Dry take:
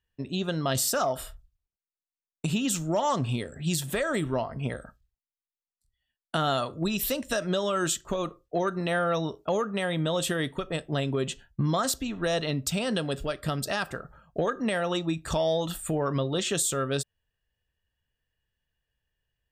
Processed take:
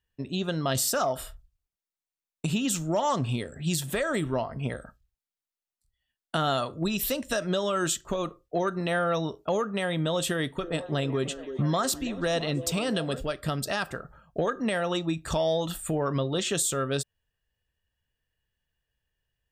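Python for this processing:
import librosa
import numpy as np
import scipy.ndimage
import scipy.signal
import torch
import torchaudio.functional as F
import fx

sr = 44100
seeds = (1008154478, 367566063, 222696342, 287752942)

y = fx.echo_stepped(x, sr, ms=332, hz=380.0, octaves=0.7, feedback_pct=70, wet_db=-7.5, at=(10.62, 13.2), fade=0.02)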